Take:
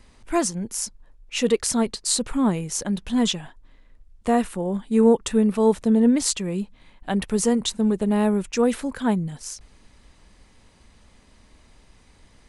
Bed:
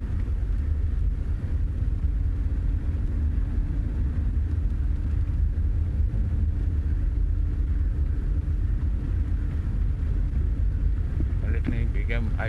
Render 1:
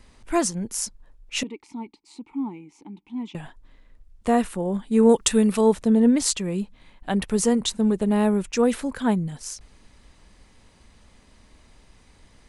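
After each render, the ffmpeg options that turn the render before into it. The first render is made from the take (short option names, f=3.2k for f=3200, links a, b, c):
-filter_complex "[0:a]asettb=1/sr,asplit=3[a][b][c];[a]atrim=end=1.434[d];[b]atrim=start=1.43:end=3.35,asetpts=PTS-STARTPTS,afade=t=in:d=0.004:c=qsin,afade=t=out:st=1.916:d=0.004:c=qsin,asplit=3[e][f][g];[e]bandpass=f=300:t=q:w=8,volume=0dB[h];[f]bandpass=f=870:t=q:w=8,volume=-6dB[i];[g]bandpass=f=2.24k:t=q:w=8,volume=-9dB[j];[h][i][j]amix=inputs=3:normalize=0[k];[c]atrim=start=3.346[l];[d][k]acrossfade=d=0.004:c1=hsin:c2=qsin[m];[m][l]acrossfade=d=0.004:c1=qsin:c2=hsin,asettb=1/sr,asplit=3[n][o][p];[n]atrim=end=5.094[q];[o]atrim=start=5.09:end=5.61,asetpts=PTS-STARTPTS,afade=t=in:d=0.004:c=qsin,afade=t=out:st=0.516:d=0.004:c=qsin,highshelf=f=2.1k:g=10.5[r];[p]atrim=start=5.606[s];[q][r]acrossfade=d=0.004:c1=hsin:c2=qsin[t];[t][s]acrossfade=d=0.004:c1=qsin:c2=hsin"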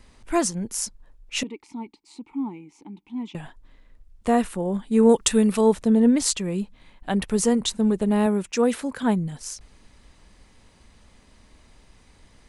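-filter_complex "[0:a]asettb=1/sr,asplit=3[a][b][c];[a]atrim=end=8.264[d];[b]atrim=start=8.26:end=9.03,asetpts=PTS-STARTPTS,afade=t=in:d=0.004:c=qsin,afade=t=out:st=0.766:d=0.004:c=qsin,highpass=f=130:p=1[e];[c]atrim=start=9.026[f];[d][e]acrossfade=d=0.004:c1=hsin:c2=qsin[g];[g][f]acrossfade=d=0.004:c1=qsin:c2=hsin"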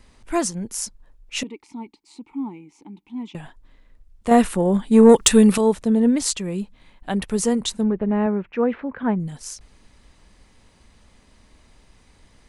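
-filter_complex "[0:a]asettb=1/sr,asplit=3[a][b][c];[a]atrim=end=4.314[d];[b]atrim=start=4.31:end=5.58,asetpts=PTS-STARTPTS,afade=t=in:d=0.004:c=qsin,afade=t=out:st=1.266:d=0.004:c=qsin,acontrast=83[e];[c]atrim=start=5.576[f];[d][e]acrossfade=d=0.004:c1=hsin:c2=qsin[g];[g][f]acrossfade=d=0.004:c1=qsin:c2=hsin,asettb=1/sr,asplit=3[h][i][j];[h]atrim=end=7.834[k];[i]atrim=start=7.83:end=9.2,asetpts=PTS-STARTPTS,afade=t=in:d=0.004:c=qsin,afade=t=out:st=1.366:d=0.004:c=qsin,lowpass=f=2.3k:w=0.5412,lowpass=f=2.3k:w=1.3066[l];[j]atrim=start=9.196[m];[k][l]acrossfade=d=0.004:c1=hsin:c2=qsin[n];[n][m]acrossfade=d=0.004:c1=qsin:c2=hsin"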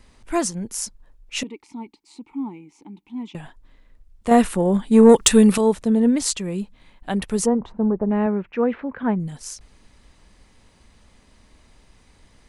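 -filter_complex "[0:a]asplit=3[a][b][c];[a]afade=t=out:st=7.45:d=0.02[d];[b]lowpass=f=950:t=q:w=1.6,afade=t=in:st=7.45:d=0.02,afade=t=out:st=8.09:d=0.02[e];[c]afade=t=in:st=8.09:d=0.02[f];[d][e][f]amix=inputs=3:normalize=0"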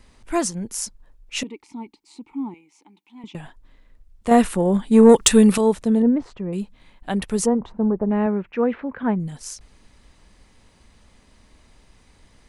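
-filter_complex "[0:a]asettb=1/sr,asplit=3[a][b][c];[a]atrim=end=2.544[d];[b]atrim=start=2.54:end=3.24,asetpts=PTS-STARTPTS,afade=t=in:d=0.004:c=qsin,afade=t=out:st=0.696:d=0.004:c=qsin,highpass=f=1.1k:p=1[e];[c]atrim=start=3.236[f];[d][e]acrossfade=d=0.004:c1=hsin:c2=qsin[g];[g][f]acrossfade=d=0.004:c1=qsin:c2=hsin,asettb=1/sr,asplit=3[h][i][j];[h]atrim=end=6.024[k];[i]atrim=start=6.02:end=6.53,asetpts=PTS-STARTPTS,afade=t=in:d=0.004:c=qsin,afade=t=out:st=0.506:d=0.004:c=qsin,lowpass=1.1k[l];[j]atrim=start=6.526[m];[k][l]acrossfade=d=0.004:c1=hsin:c2=qsin[n];[n][m]acrossfade=d=0.004:c1=qsin:c2=hsin"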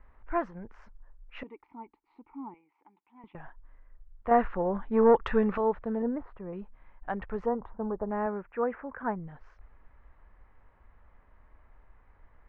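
-af "lowpass=f=1.6k:w=0.5412,lowpass=f=1.6k:w=1.3066,equalizer=f=210:w=0.49:g=-15"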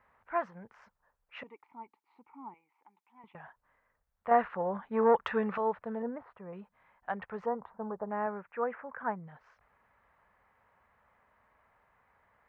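-af "highpass=180,equalizer=f=310:w=1.6:g=-11.5"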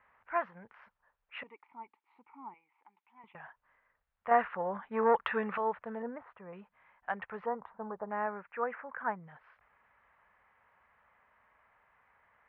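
-af "lowpass=f=3.1k:w=0.5412,lowpass=f=3.1k:w=1.3066,tiltshelf=f=930:g=-5"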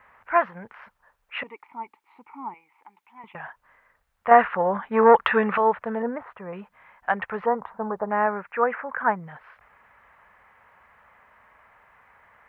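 -af "volume=12dB,alimiter=limit=-3dB:level=0:latency=1"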